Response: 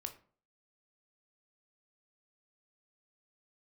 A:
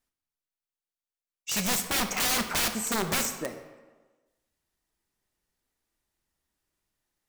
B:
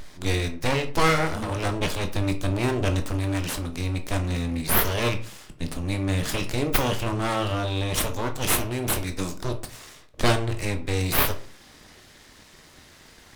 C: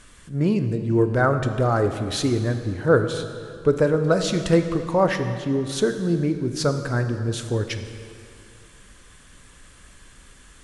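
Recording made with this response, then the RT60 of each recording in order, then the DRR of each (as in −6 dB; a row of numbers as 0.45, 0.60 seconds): B; 1.3, 0.45, 2.4 seconds; 7.5, 5.5, 7.0 decibels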